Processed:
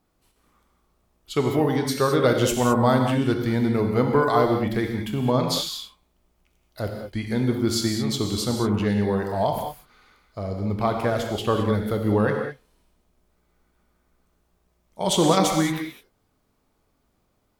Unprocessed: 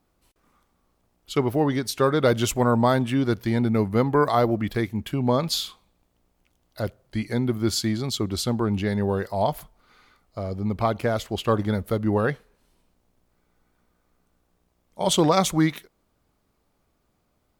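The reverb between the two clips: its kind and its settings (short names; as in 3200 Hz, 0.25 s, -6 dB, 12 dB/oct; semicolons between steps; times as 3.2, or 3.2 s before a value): non-linear reverb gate 0.24 s flat, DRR 2.5 dB; gain -1 dB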